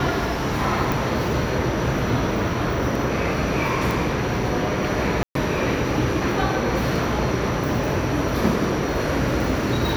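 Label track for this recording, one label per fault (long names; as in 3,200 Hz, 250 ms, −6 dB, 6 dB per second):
0.920000	0.920000	click
3.910000	3.910000	click
5.230000	5.350000	drop-out 123 ms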